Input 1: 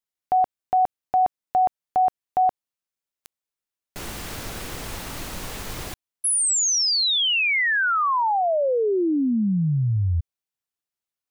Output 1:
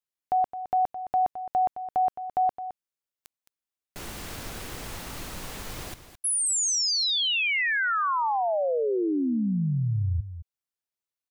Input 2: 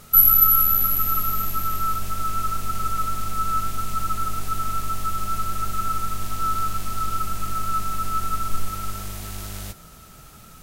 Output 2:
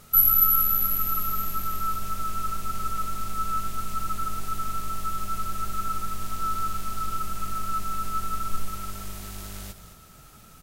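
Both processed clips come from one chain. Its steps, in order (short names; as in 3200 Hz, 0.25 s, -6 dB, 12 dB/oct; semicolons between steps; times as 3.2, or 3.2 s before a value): echo 0.215 s -12 dB; gain -4.5 dB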